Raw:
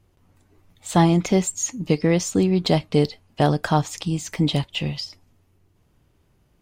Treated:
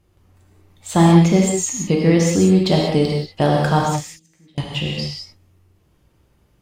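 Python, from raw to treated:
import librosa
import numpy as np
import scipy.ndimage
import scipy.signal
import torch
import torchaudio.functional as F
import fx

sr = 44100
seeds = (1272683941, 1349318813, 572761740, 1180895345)

y = fx.gate_flip(x, sr, shuts_db=-21.0, range_db=-34, at=(3.9, 4.58))
y = fx.rev_gated(y, sr, seeds[0], gate_ms=220, shape='flat', drr_db=-1.5)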